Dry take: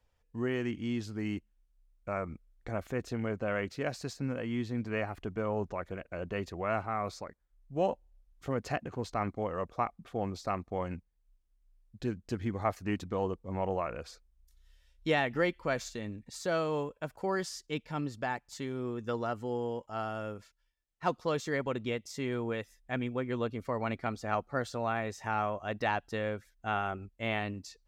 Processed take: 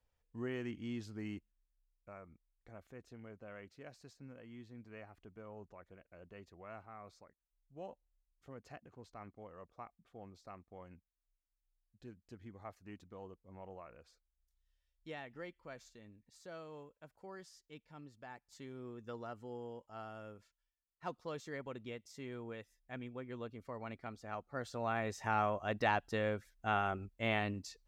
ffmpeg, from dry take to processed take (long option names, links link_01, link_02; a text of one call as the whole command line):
ffmpeg -i in.wav -af "volume=9dB,afade=type=out:start_time=1.19:duration=1:silence=0.298538,afade=type=in:start_time=18.21:duration=0.47:silence=0.473151,afade=type=in:start_time=24.45:duration=0.74:silence=0.298538" out.wav